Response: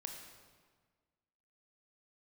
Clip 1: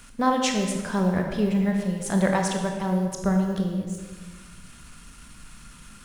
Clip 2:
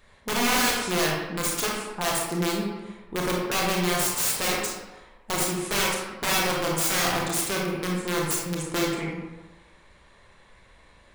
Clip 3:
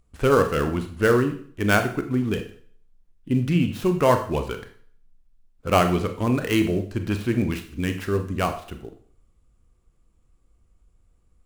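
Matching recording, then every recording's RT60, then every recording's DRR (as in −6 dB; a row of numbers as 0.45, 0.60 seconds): 1; 1.6, 1.2, 0.50 seconds; 2.5, −2.5, 6.5 decibels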